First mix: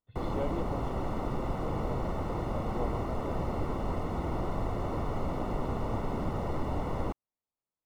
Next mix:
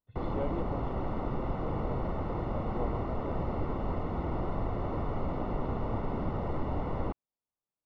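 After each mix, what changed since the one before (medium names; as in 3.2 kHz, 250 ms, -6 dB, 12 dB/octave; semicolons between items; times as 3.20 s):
master: add distance through air 220 m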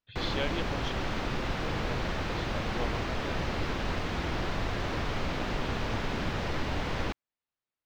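speech: add treble shelf 3.4 kHz +11 dB; master: remove Savitzky-Golay filter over 65 samples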